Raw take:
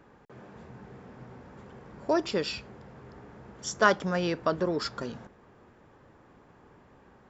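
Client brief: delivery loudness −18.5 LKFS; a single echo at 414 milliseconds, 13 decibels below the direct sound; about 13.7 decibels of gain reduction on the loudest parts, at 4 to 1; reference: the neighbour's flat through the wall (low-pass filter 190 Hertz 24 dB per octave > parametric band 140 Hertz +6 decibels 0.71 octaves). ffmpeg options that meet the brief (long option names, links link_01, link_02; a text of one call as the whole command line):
ffmpeg -i in.wav -af "acompressor=threshold=-33dB:ratio=4,lowpass=frequency=190:width=0.5412,lowpass=frequency=190:width=1.3066,equalizer=frequency=140:width_type=o:width=0.71:gain=6,aecho=1:1:414:0.224,volume=28.5dB" out.wav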